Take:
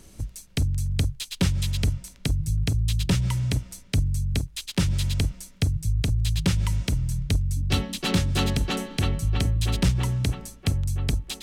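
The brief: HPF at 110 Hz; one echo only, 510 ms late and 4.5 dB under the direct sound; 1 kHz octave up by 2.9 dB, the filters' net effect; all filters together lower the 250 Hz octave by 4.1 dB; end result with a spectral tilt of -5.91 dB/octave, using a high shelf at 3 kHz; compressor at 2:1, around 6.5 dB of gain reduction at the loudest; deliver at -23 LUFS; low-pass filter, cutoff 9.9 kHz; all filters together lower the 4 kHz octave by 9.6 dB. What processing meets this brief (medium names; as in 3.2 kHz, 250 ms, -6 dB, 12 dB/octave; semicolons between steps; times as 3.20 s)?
high-pass 110 Hz; low-pass 9.9 kHz; peaking EQ 250 Hz -6 dB; peaking EQ 1 kHz +5.5 dB; treble shelf 3 kHz -8 dB; peaking EQ 4 kHz -6.5 dB; compression 2:1, threshold -33 dBFS; delay 510 ms -4.5 dB; trim +11.5 dB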